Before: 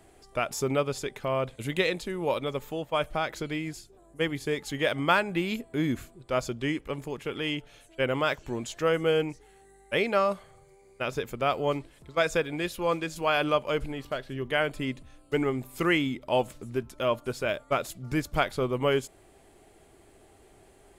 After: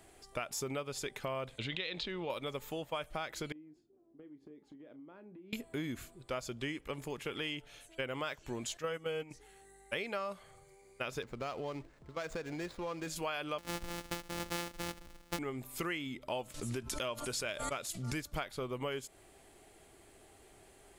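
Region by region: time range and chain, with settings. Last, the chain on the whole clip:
0:01.58–0:02.30: transistor ladder low-pass 4,400 Hz, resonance 50% + envelope flattener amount 70%
0:03.52–0:05.53: resonant band-pass 290 Hz, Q 3 + downward compressor 10 to 1, threshold −46 dBFS + double-tracking delay 33 ms −12 dB
0:08.77–0:09.31: noise gate −28 dBFS, range −9 dB + notch comb filter 350 Hz
0:11.22–0:13.07: running median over 15 samples + parametric band 14,000 Hz −9 dB 0.79 octaves + downward compressor 3 to 1, threshold −31 dBFS
0:13.58–0:15.39: samples sorted by size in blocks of 256 samples + comb filter 3.5 ms, depth 43%
0:16.54–0:18.21: low-pass filter 9,700 Hz + high-shelf EQ 4,000 Hz +10 dB + background raised ahead of every attack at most 64 dB per second
whole clip: tilt shelving filter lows −3 dB, about 1,200 Hz; downward compressor, threshold −33 dBFS; level −2 dB

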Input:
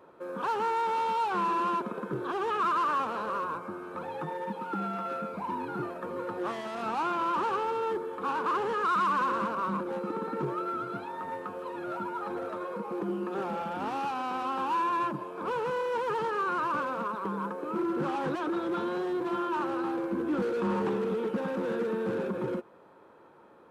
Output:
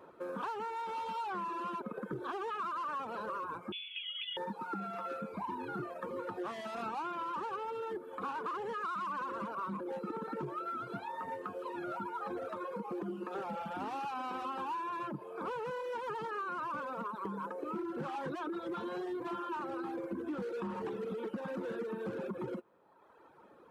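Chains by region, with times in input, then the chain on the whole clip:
0:03.72–0:04.37: Chebyshev high-pass filter 340 Hz, order 4 + high-frequency loss of the air 370 metres + voice inversion scrambler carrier 3,800 Hz
whole clip: reverb reduction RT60 1.3 s; downward compressor, threshold −36 dBFS

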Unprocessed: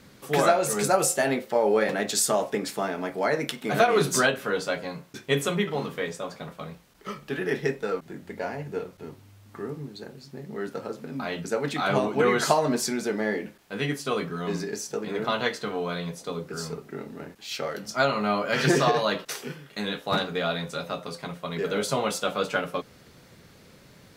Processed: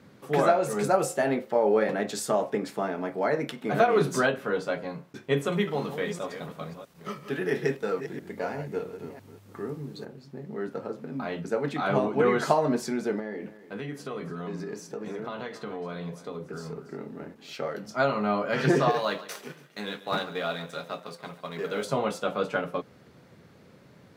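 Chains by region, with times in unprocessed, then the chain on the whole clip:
0:05.52–0:10.05: delay that plays each chunk backwards 334 ms, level −10 dB + high-shelf EQ 3,700 Hz +11 dB
0:13.19–0:17.53: downward compressor 4 to 1, threshold −31 dBFS + single-tap delay 284 ms −15.5 dB
0:18.90–0:21.85: mu-law and A-law mismatch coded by A + spectral tilt +2 dB per octave + repeating echo 141 ms, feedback 44%, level −16.5 dB
whole clip: high-pass filter 91 Hz; high-shelf EQ 2,500 Hz −12 dB

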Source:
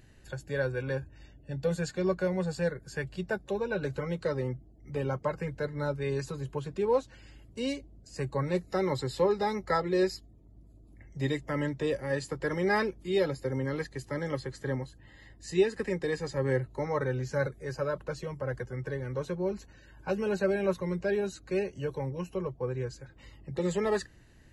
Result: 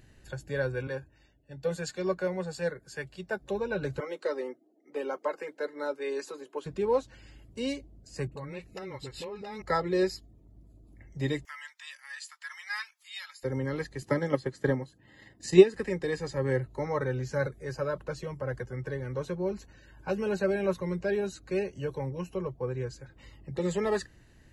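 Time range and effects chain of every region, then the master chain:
0:00.87–0:03.42: low-shelf EQ 170 Hz −11 dB + multiband upward and downward expander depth 40%
0:04.00–0:06.66: Butterworth high-pass 280 Hz + one half of a high-frequency compander decoder only
0:08.27–0:09.62: parametric band 2,600 Hz +13 dB 0.4 octaves + downward compressor, threshold −37 dBFS + all-pass dispersion highs, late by 48 ms, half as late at 470 Hz
0:11.45–0:13.43: Bessel high-pass filter 1,900 Hz, order 8 + upward compression, threshold −55 dBFS
0:14.02–0:15.74: high-pass filter 160 Hz + low-shelf EQ 390 Hz +5 dB + transient designer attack +8 dB, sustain −4 dB
whole clip: no processing

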